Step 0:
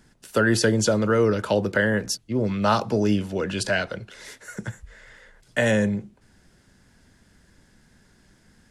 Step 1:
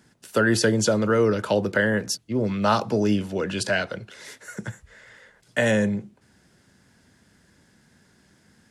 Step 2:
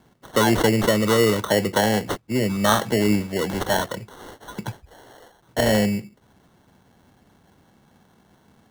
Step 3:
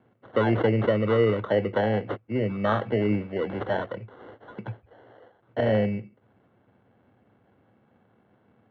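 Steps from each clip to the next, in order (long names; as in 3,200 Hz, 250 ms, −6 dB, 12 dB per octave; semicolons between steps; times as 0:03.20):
high-pass filter 89 Hz
decimation without filtering 18×; level +2 dB
loudspeaker in its box 110–2,500 Hz, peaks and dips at 110 Hz +8 dB, 160 Hz −7 dB, 510 Hz +4 dB, 950 Hz −5 dB, 1,800 Hz −4 dB; level −4.5 dB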